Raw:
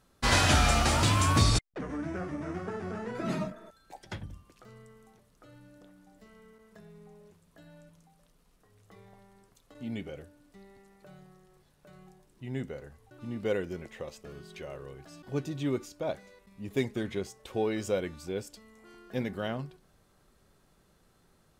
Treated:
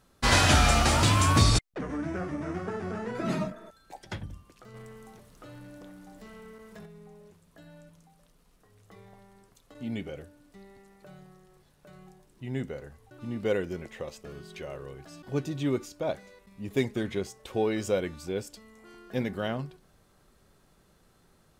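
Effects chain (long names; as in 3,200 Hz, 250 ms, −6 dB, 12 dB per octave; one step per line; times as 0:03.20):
0:04.74–0:06.86: leveller curve on the samples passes 2
level +2.5 dB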